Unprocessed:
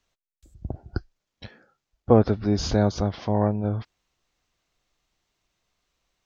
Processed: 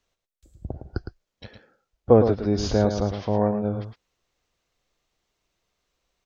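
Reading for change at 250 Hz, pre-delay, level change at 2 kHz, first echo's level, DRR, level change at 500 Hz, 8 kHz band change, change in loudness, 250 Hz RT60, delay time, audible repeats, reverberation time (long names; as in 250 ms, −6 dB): 0.0 dB, no reverb audible, −1.0 dB, −8.0 dB, no reverb audible, +3.0 dB, can't be measured, +1.0 dB, no reverb audible, 110 ms, 1, no reverb audible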